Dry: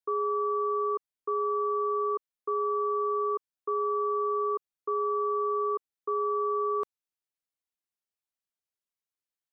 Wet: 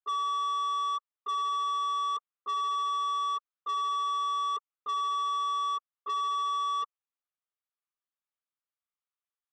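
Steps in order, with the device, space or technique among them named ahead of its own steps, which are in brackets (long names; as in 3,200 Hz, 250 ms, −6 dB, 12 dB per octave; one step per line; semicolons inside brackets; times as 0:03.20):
talking toy (linear-prediction vocoder at 8 kHz pitch kept; high-pass filter 480 Hz 12 dB per octave; parametric band 1,200 Hz +11 dB 0.37 octaves; soft clipping −24 dBFS, distortion −13 dB)
level −4.5 dB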